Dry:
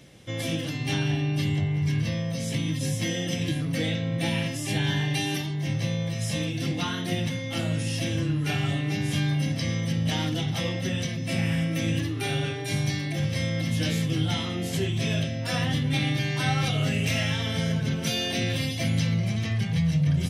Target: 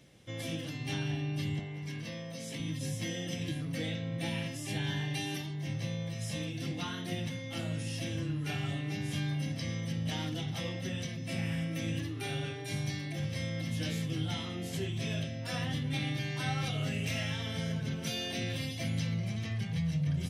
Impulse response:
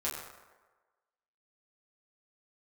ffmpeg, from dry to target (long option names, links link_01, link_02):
-filter_complex "[0:a]asettb=1/sr,asplit=3[link_01][link_02][link_03];[link_01]atrim=end=1.594[link_04];[link_02]atrim=start=1.59:end=2.6,asetpts=PTS-STARTPTS,afade=type=in:duration=0.004:curve=qsin,afade=type=out:start_time=1.006:duration=0.004:curve=qsin,highpass=210[link_05];[link_03]atrim=start=2.596[link_06];[link_04][link_05]acrossfade=duration=0.004:curve1=hsin:curve2=qsin[link_07];[link_07][link_06]acrossfade=duration=0.004:curve1=qsin:curve2=hsin,volume=-8.5dB"